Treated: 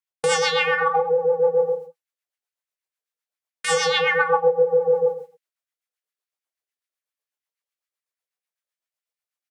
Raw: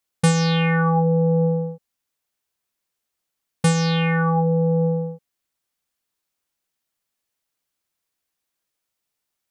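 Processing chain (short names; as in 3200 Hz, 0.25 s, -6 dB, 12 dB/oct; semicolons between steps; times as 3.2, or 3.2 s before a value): LFO high-pass sine 6.9 Hz 470–2100 Hz; in parallel at -11 dB: soft clip -13.5 dBFS, distortion -16 dB; on the sum: gate with hold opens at -38 dBFS; reverse bouncing-ball echo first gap 20 ms, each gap 1.3×, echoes 5; reverse; compressor, threshold -22 dBFS, peak gain reduction 11.5 dB; reverse; rotary speaker horn 8 Hz; gain +8 dB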